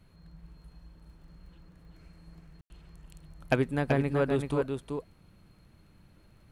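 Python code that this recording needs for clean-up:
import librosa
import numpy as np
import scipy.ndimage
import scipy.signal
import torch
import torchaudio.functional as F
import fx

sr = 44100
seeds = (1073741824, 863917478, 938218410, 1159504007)

y = fx.fix_declick_ar(x, sr, threshold=6.5)
y = fx.fix_ambience(y, sr, seeds[0], print_start_s=5.53, print_end_s=6.03, start_s=2.61, end_s=2.7)
y = fx.fix_echo_inverse(y, sr, delay_ms=381, level_db=-5.5)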